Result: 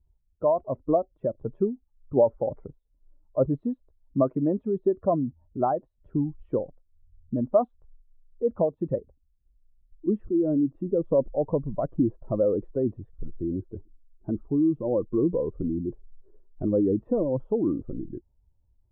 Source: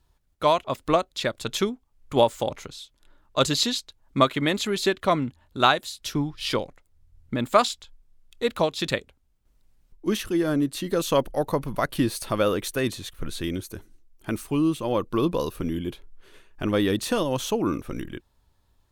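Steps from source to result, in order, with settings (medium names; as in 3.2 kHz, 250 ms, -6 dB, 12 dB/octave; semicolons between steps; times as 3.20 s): spectral contrast enhancement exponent 1.6; inverse Chebyshev low-pass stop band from 4.4 kHz, stop band 80 dB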